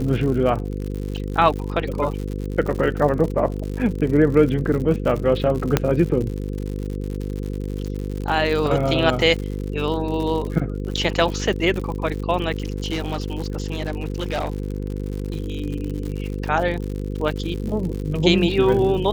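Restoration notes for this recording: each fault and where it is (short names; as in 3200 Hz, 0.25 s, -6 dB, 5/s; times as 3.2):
buzz 50 Hz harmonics 10 -27 dBFS
crackle 96/s -28 dBFS
5.77 pop -2 dBFS
12.66–15.36 clipped -19.5 dBFS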